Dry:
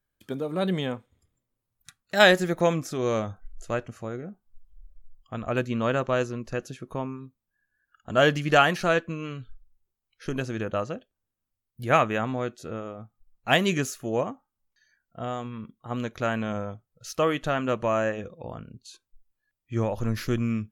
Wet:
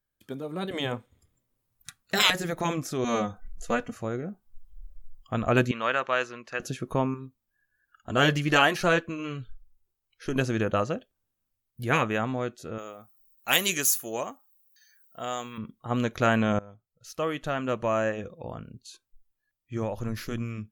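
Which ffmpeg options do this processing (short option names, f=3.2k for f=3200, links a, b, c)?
-filter_complex "[0:a]asettb=1/sr,asplit=3[a][b][c];[a]atrim=end=3.044[d];[b]atrim=start=3.04:end=3.95,asetpts=PTS-STARTPTS,afade=t=in:d=0.004:c=qsin,afade=t=out:st=0.906:d=0.004:c=qsin,aecho=1:1:4.1:0.89,atrim=end_sample=40131[e];[c]atrim=start=3.946[f];[d][e]acrossfade=d=0.004:c1=hsin:c2=qsin[g];[g][f]acrossfade=d=0.004:c1=qsin:c2=hsin,asettb=1/sr,asplit=3[h][i][j];[h]atrim=end=5.714[k];[i]atrim=start=5.71:end=6.6,asetpts=PTS-STARTPTS,afade=t=in:d=0.004:c=qsin,afade=t=out:st=0.886:d=0.004:c=qsin,bandpass=f=2k:t=q:w=0.87[l];[j]atrim=start=6.596[m];[k][l]acrossfade=d=0.004:c1=hsin:c2=qsin[n];[n][m]acrossfade=d=0.004:c1=qsin:c2=hsin,asettb=1/sr,asplit=3[o][p][q];[o]atrim=end=7.144[r];[p]atrim=start=7.14:end=10.36,asetpts=PTS-STARTPTS,afade=t=in:d=0.004:c=qsin,afade=t=out:st=3.216:d=0.004:c=qsin,flanger=delay=1.8:depth=1.6:regen=-59:speed=1.7:shape=triangular[s];[q]atrim=start=10.356[t];[r][s]acrossfade=d=0.004:c1=hsin:c2=qsin[u];[u][t]acrossfade=d=0.004:c1=qsin:c2=hsin,asettb=1/sr,asplit=3[v][w][x];[v]atrim=end=12.784[y];[w]atrim=start=12.78:end=15.58,asetpts=PTS-STARTPTS,afade=t=in:d=0.004:c=qsin,afade=t=out:st=2.796:d=0.004:c=qsin,aemphasis=mode=production:type=riaa[z];[x]atrim=start=15.576[aa];[y][z]acrossfade=d=0.004:c1=hsin:c2=qsin[ab];[ab][aa]acrossfade=d=0.004:c1=qsin:c2=hsin,asplit=4[ac][ad][ae][af];[ac]atrim=end=0.712[ag];[ad]atrim=start=0.708:end=2.302,asetpts=PTS-STARTPTS,volume=6.5dB[ah];[ae]atrim=start=2.298:end=16.59,asetpts=PTS-STARTPTS,afade=t=out:st=14.288:d=0.004:c=hsin:silence=0.0944061[ai];[af]atrim=start=16.59,asetpts=PTS-STARTPTS,afade=t=in:d=3.58:silence=0.0944061[aj];[ag][ah]acrossfade=d=0.004:c1=hsin:c2=hsin[ak];[ai][aj]concat=n=2:v=0:a=1[al];[ak][al]acrossfade=d=0.004:c1=hsin:c2=hsin,afftfilt=real='re*lt(hypot(re,im),0.501)':imag='im*lt(hypot(re,im),0.501)':win_size=1024:overlap=0.75,highshelf=f=12k:g=5,dynaudnorm=f=130:g=31:m=11.5dB,volume=-4dB"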